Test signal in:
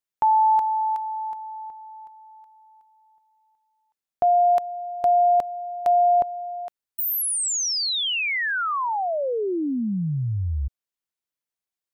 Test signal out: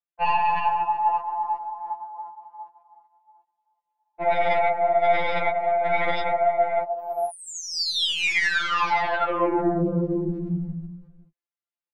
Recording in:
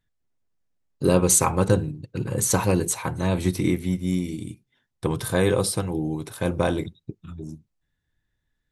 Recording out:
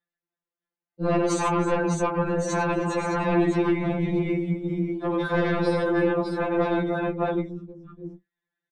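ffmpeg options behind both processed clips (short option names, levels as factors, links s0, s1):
-filter_complex "[0:a]bandreject=f=550:w=12,acontrast=81,highpass=270,lowpass=2600,asplit=2[s0][s1];[s1]aecho=0:1:98|312|609:0.562|0.335|0.596[s2];[s0][s2]amix=inputs=2:normalize=0,afftdn=nr=13:nf=-37,afftfilt=real='hypot(re,im)*cos(2*PI*random(0))':imag='hypot(re,im)*sin(2*PI*random(1))':win_size=512:overlap=0.75,aeval=exprs='0.794*(cos(1*acos(clip(val(0)/0.794,-1,1)))-cos(1*PI/2))+0.0112*(cos(2*acos(clip(val(0)/0.794,-1,1)))-cos(2*PI/2))+0.224*(cos(3*acos(clip(val(0)/0.794,-1,1)))-cos(3*PI/2))+0.112*(cos(4*acos(clip(val(0)/0.794,-1,1)))-cos(4*PI/2))+0.224*(cos(7*acos(clip(val(0)/0.794,-1,1)))-cos(7*PI/2))':c=same,acompressor=threshold=0.0891:ratio=16:attack=2.3:release=77:knee=6:detection=peak,afftfilt=real='re*2.83*eq(mod(b,8),0)':imag='im*2.83*eq(mod(b,8),0)':win_size=2048:overlap=0.75,volume=1.58"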